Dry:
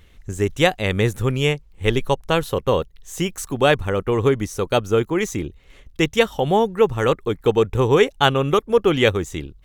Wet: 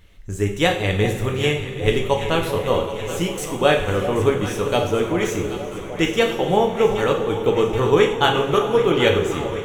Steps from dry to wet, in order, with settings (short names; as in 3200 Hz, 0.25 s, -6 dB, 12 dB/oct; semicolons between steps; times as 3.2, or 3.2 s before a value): echo with dull and thin repeats by turns 0.39 s, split 820 Hz, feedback 82%, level -10 dB; on a send at -1.5 dB: reverb, pre-delay 3 ms; on the sum: gain -2.5 dB